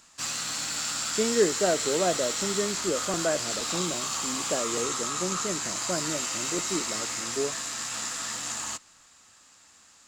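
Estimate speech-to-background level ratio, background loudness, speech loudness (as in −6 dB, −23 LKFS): −2.0 dB, −29.0 LKFS, −31.0 LKFS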